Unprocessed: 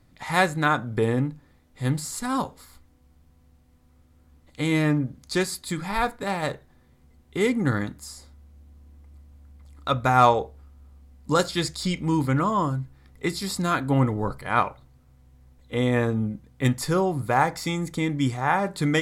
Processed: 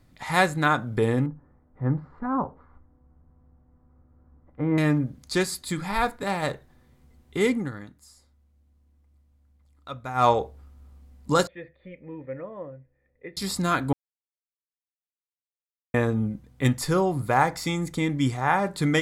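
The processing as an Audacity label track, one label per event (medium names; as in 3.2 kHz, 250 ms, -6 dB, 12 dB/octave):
1.260000	4.780000	low-pass 1.4 kHz 24 dB/octave
7.530000	10.310000	dip -13 dB, fades 0.17 s
11.470000	13.370000	cascade formant filter e
13.930000	15.940000	mute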